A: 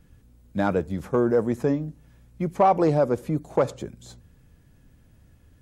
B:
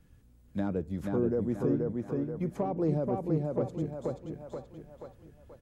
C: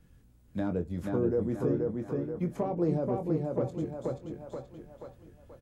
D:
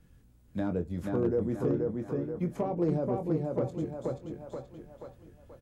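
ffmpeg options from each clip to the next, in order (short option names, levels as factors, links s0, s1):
-filter_complex "[0:a]asplit=2[s0][s1];[s1]adelay=480,lowpass=f=3700:p=1,volume=0.708,asplit=2[s2][s3];[s3]adelay=480,lowpass=f=3700:p=1,volume=0.4,asplit=2[s4][s5];[s5]adelay=480,lowpass=f=3700:p=1,volume=0.4,asplit=2[s6][s7];[s7]adelay=480,lowpass=f=3700:p=1,volume=0.4,asplit=2[s8][s9];[s9]adelay=480,lowpass=f=3700:p=1,volume=0.4[s10];[s0][s2][s4][s6][s8][s10]amix=inputs=6:normalize=0,acrossover=split=450[s11][s12];[s12]acompressor=threshold=0.01:ratio=3[s13];[s11][s13]amix=inputs=2:normalize=0,volume=0.531"
-filter_complex "[0:a]asplit=2[s0][s1];[s1]adelay=23,volume=0.422[s2];[s0][s2]amix=inputs=2:normalize=0"
-af "asoftclip=type=hard:threshold=0.106"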